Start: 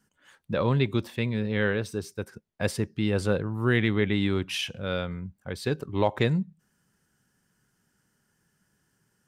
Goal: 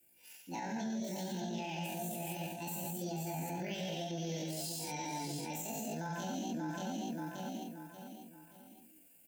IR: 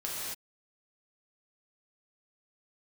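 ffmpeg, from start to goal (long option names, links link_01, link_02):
-filter_complex "[0:a]acrossover=split=290|5200[link_01][link_02][link_03];[link_01]adynamicequalizer=threshold=0.00891:dfrequency=130:dqfactor=1.2:tfrequency=130:tqfactor=1.2:attack=5:release=100:ratio=0.375:range=2.5:mode=boostabove:tftype=bell[link_04];[link_03]crystalizer=i=5:c=0[link_05];[link_04][link_02][link_05]amix=inputs=3:normalize=0,flanger=delay=6.2:depth=2.7:regen=-68:speed=0.23:shape=triangular,asuperstop=centerf=720:order=8:qfactor=2.7,bandreject=frequency=60:width_type=h:width=6,bandreject=frequency=120:width_type=h:width=6,bandreject=frequency=180:width_type=h:width=6,bandreject=frequency=240:width_type=h:width=6,asplit=2[link_06][link_07];[link_07]adelay=580,lowpass=frequency=4500:poles=1,volume=-10.5dB,asplit=2[link_08][link_09];[link_09]adelay=580,lowpass=frequency=4500:poles=1,volume=0.39,asplit=2[link_10][link_11];[link_11]adelay=580,lowpass=frequency=4500:poles=1,volume=0.39,asplit=2[link_12][link_13];[link_13]adelay=580,lowpass=frequency=4500:poles=1,volume=0.39[link_14];[link_06][link_08][link_10][link_12][link_14]amix=inputs=5:normalize=0[link_15];[1:a]atrim=start_sample=2205,afade=type=out:start_time=0.32:duration=0.01,atrim=end_sample=14553[link_16];[link_15][link_16]afir=irnorm=-1:irlink=0,areverse,acompressor=threshold=-35dB:ratio=4,areverse,asetrate=72056,aresample=44100,atempo=0.612027,equalizer=frequency=7100:width=3.1:gain=10,alimiter=level_in=7dB:limit=-24dB:level=0:latency=1:release=75,volume=-7dB"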